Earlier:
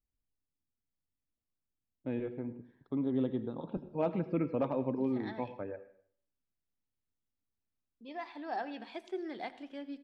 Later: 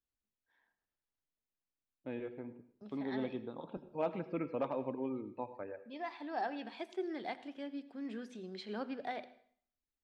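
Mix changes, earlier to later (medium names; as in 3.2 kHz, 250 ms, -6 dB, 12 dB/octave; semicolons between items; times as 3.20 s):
first voice: add bass shelf 330 Hz -11.5 dB; second voice: entry -2.15 s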